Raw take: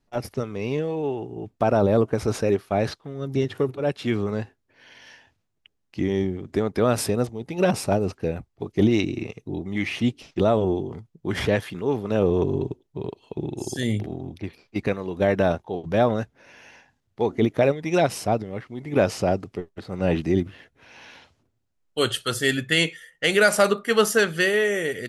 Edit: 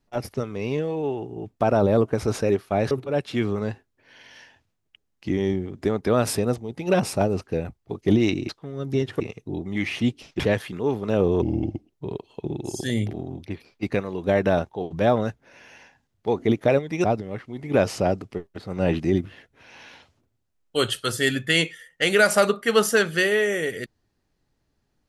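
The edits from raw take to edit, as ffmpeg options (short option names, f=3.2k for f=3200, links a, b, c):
-filter_complex "[0:a]asplit=8[a][b][c][d][e][f][g][h];[a]atrim=end=2.912[i];[b]atrim=start=3.618:end=9.202[j];[c]atrim=start=2.908:end=3.622[k];[d]atrim=start=9.198:end=10.402[l];[e]atrim=start=11.418:end=12.444[m];[f]atrim=start=12.44:end=12.85,asetpts=PTS-STARTPTS,asetrate=36162,aresample=44100[n];[g]atrim=start=12.846:end=17.972[o];[h]atrim=start=18.258[p];[i][j]acrossfade=d=0.004:c1=hsin:c2=hsin[q];[q][k]acrossfade=d=0.004:c1=hsin:c2=hsin[r];[r][l]acrossfade=d=0.004:c1=hsin:c2=hsin[s];[s][m]acrossfade=d=0.004:c1=hsin:c2=hsin[t];[t][n]acrossfade=d=0.004:c1=hsin:c2=hsin[u];[u][o]acrossfade=d=0.004:c1=hsin:c2=hsin[v];[v][p]acrossfade=d=0.004:c1=hsin:c2=hsin"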